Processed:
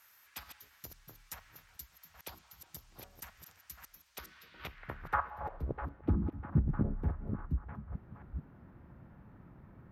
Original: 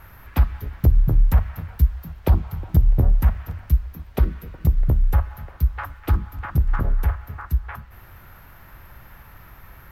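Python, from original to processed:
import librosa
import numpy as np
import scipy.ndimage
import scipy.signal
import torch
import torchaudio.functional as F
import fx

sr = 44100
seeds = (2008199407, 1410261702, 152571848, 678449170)

y = fx.reverse_delay(x, sr, ms=442, wet_db=-7.0)
y = fx.dynamic_eq(y, sr, hz=1400.0, q=0.92, threshold_db=-47.0, ratio=4.0, max_db=5, at=(3.61, 5.28))
y = fx.filter_sweep_bandpass(y, sr, from_hz=6900.0, to_hz=230.0, start_s=4.19, end_s=6.09, q=1.6)
y = F.gain(torch.from_numpy(y), 1.0).numpy()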